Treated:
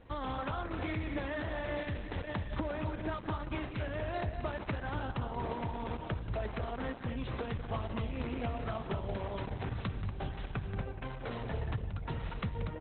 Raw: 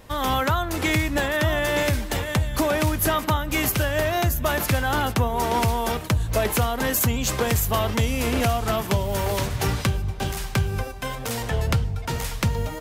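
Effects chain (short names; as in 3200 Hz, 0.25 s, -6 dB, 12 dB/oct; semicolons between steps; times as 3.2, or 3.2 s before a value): 1.35–1.86 dynamic EQ 140 Hz, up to -6 dB, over -40 dBFS, Q 2.8; compressor 8:1, threshold -24 dBFS, peak gain reduction 8.5 dB; air absorption 250 m; on a send: loudspeakers at several distances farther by 62 m -11 dB, 82 m -8 dB; on the sum: gain -7 dB; Opus 8 kbps 48000 Hz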